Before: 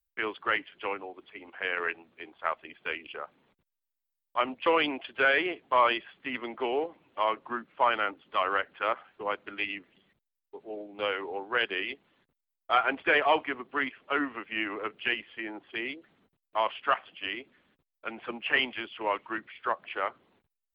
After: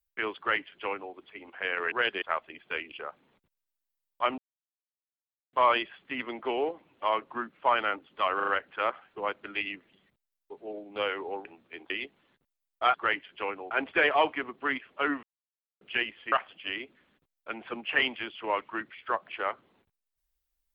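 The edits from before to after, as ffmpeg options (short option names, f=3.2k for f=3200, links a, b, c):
-filter_complex "[0:a]asplit=15[a][b][c][d][e][f][g][h][i][j][k][l][m][n][o];[a]atrim=end=1.922[p];[b]atrim=start=11.478:end=11.782[q];[c]atrim=start=2.368:end=4.53,asetpts=PTS-STARTPTS,afade=t=out:st=2.158:d=0.004:c=hsin[r];[d]atrim=start=4.53:end=5.68,asetpts=PTS-STARTPTS,volume=0[s];[e]atrim=start=5.68:end=8.552,asetpts=PTS-STARTPTS,afade=t=in:d=0.004:c=hsin[t];[f]atrim=start=8.508:end=8.552[u];[g]atrim=start=8.508:end=8.552[v];[h]atrim=start=8.508:end=11.482[w];[i]atrim=start=1.918:end=2.372[x];[j]atrim=start=11.778:end=12.822[y];[k]atrim=start=0.368:end=1.142[z];[l]atrim=start=12.818:end=14.34,asetpts=PTS-STARTPTS,afade=t=out:st=1.518:d=0.004:c=hsin[aa];[m]atrim=start=14.34:end=14.92,asetpts=PTS-STARTPTS,volume=0[ab];[n]atrim=start=14.92:end=15.432,asetpts=PTS-STARTPTS,afade=t=in:d=0.004:c=hsin[ac];[o]atrim=start=16.888[ad];[p][q]acrossfade=d=0.004:c1=hsin:c2=hsin[ae];[r][s][t]concat=n=3:v=0:a=1[af];[ae][af]acrossfade=d=0.004:c1=hsin:c2=hsin[ag];[ag][u]acrossfade=d=0.004:c1=hsin:c2=hsin[ah];[ah][v]acrossfade=d=0.004:c1=hsin:c2=hsin[ai];[ai][w]acrossfade=d=0.004:c1=hsin:c2=hsin[aj];[aj][x]acrossfade=d=0.004:c1=hsin:c2=hsin[ak];[ak][y]acrossfade=d=0.004:c1=hsin:c2=hsin[al];[al][z]acrossfade=d=0.004:c1=hsin:c2=hsin[am];[aa][ab][ac]concat=n=3:v=0:a=1[an];[am][an]acrossfade=d=0.004:c1=hsin:c2=hsin[ao];[ao][ad]acrossfade=d=0.004:c1=hsin:c2=hsin"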